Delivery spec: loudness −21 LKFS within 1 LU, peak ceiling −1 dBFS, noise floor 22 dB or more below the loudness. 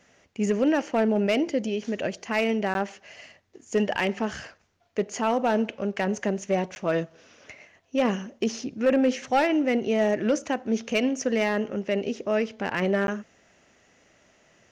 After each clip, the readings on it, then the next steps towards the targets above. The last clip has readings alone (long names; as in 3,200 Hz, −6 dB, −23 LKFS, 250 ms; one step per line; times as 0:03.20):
share of clipped samples 0.5%; peaks flattened at −15.0 dBFS; number of dropouts 3; longest dropout 11 ms; integrated loudness −26.0 LKFS; sample peak −15.0 dBFS; target loudness −21.0 LKFS
→ clipped peaks rebuilt −15 dBFS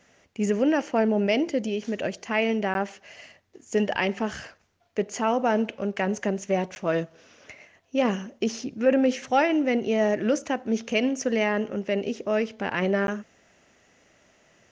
share of clipped samples 0.0%; number of dropouts 3; longest dropout 11 ms
→ repair the gap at 0:02.74/0:06.75/0:13.07, 11 ms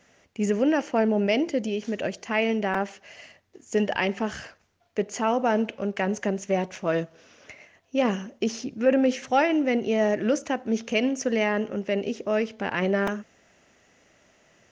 number of dropouts 0; integrated loudness −26.0 LKFS; sample peak −9.5 dBFS; target loudness −21.0 LKFS
→ level +5 dB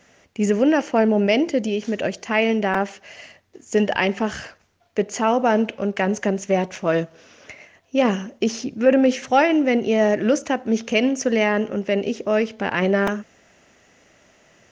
integrated loudness −21.0 LKFS; sample peak −4.5 dBFS; background noise floor −59 dBFS